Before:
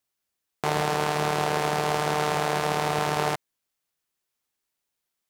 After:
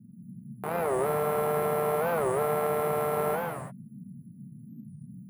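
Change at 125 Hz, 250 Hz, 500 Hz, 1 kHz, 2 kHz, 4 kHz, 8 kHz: −5.0, −3.0, +2.0, −5.0, −8.0, −18.0, −7.5 decibels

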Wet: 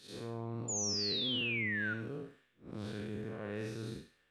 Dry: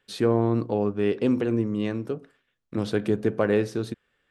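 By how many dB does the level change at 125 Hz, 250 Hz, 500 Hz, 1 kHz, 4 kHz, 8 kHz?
−12.5 dB, −16.5 dB, −18.5 dB, −15.0 dB, +6.0 dB, can't be measured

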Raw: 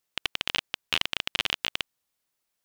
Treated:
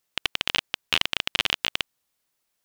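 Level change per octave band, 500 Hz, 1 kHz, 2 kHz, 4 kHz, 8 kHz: +3.5, +3.5, +3.5, +3.5, +3.5 decibels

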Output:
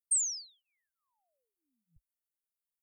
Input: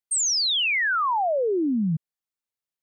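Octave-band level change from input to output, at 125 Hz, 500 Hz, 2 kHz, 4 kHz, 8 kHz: below −40 dB, below −40 dB, below −40 dB, −24.0 dB, −6.5 dB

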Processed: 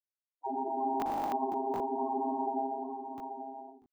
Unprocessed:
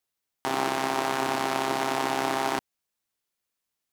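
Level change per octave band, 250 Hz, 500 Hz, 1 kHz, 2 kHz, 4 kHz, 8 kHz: −3.5 dB, −5.5 dB, −4.0 dB, −25.5 dB, below −25 dB, below −20 dB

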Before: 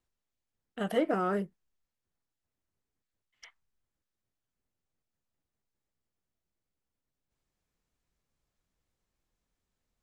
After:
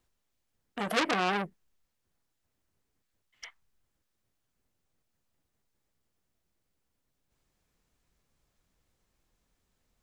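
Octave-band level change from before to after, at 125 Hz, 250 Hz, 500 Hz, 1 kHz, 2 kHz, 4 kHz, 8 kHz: −1.5, −2.5, −3.5, +4.5, +9.0, +11.5, +11.5 decibels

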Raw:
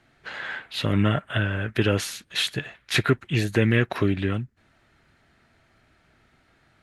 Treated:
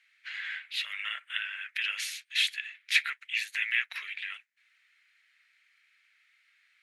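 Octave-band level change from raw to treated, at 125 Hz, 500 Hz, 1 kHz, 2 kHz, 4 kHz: below −40 dB, below −40 dB, −14.5 dB, −1.5 dB, −2.0 dB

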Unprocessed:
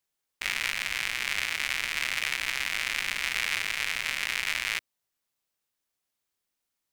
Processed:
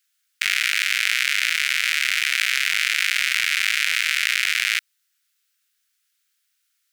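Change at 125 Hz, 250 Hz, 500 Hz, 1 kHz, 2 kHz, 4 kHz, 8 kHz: below −30 dB, below −25 dB, below −25 dB, +4.0 dB, +9.0 dB, +9.5 dB, +9.0 dB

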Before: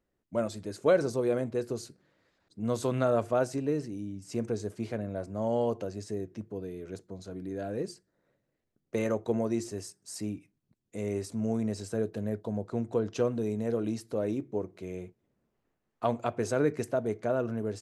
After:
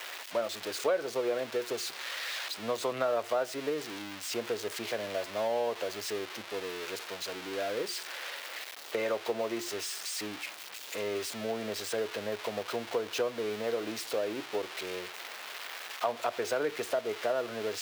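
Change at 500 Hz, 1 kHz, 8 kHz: −1.5, +1.5, +6.0 decibels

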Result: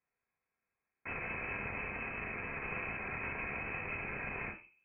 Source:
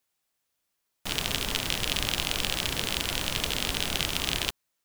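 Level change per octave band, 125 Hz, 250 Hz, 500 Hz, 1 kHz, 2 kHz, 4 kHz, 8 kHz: −10.0 dB, −9.5 dB, −7.5 dB, −6.5 dB, −4.5 dB, −38.0 dB, below −40 dB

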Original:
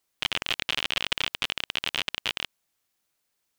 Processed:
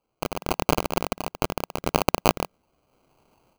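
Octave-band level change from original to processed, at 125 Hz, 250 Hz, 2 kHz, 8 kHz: +15.5, +16.5, −4.0, +6.5 decibels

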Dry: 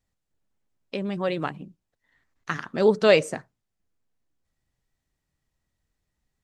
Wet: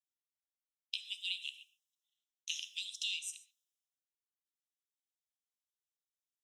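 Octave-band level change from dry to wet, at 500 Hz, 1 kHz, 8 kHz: below −40 dB, below −40 dB, 0.0 dB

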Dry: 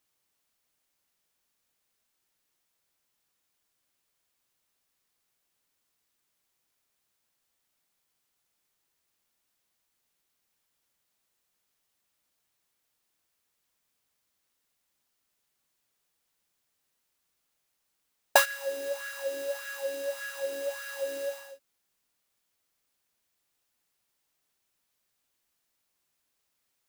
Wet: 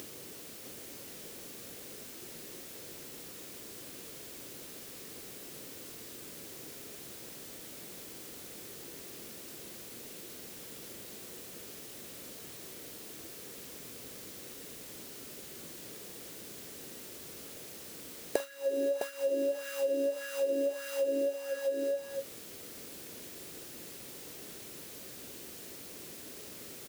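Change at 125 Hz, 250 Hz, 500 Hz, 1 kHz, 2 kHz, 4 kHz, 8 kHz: can't be measured, +15.5 dB, +3.0 dB, −11.5 dB, −10.0 dB, −2.0 dB, +1.0 dB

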